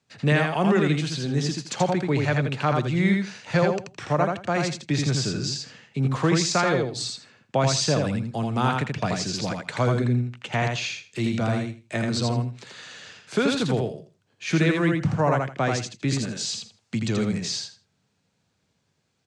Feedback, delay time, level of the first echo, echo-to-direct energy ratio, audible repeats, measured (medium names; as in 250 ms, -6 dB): 19%, 82 ms, -3.5 dB, -3.5 dB, 3